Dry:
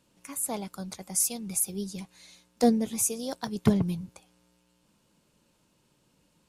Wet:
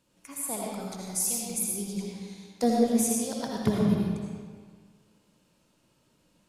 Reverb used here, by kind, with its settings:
comb and all-pass reverb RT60 1.7 s, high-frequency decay 0.75×, pre-delay 40 ms, DRR −3 dB
level −3.5 dB

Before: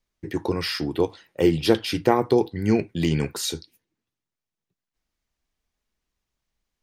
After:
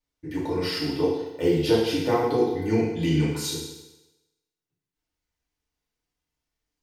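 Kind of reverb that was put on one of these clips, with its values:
feedback delay network reverb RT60 0.98 s, low-frequency decay 0.85×, high-frequency decay 1×, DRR −8 dB
level −10.5 dB

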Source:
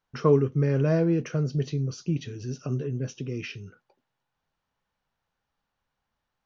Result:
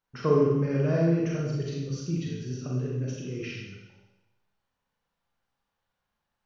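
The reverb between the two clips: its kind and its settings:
four-comb reverb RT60 1 s, combs from 32 ms, DRR −3.5 dB
level −5.5 dB

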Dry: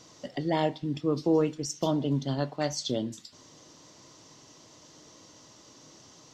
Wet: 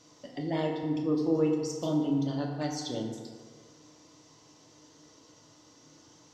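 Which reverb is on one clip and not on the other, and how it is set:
feedback delay network reverb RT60 1.8 s, low-frequency decay 0.8×, high-frequency decay 0.45×, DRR 0 dB
level −7 dB

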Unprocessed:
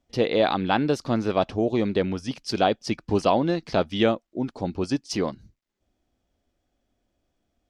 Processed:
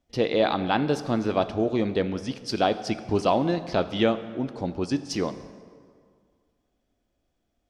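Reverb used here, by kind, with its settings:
dense smooth reverb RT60 2 s, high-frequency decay 0.65×, DRR 11.5 dB
level −1.5 dB

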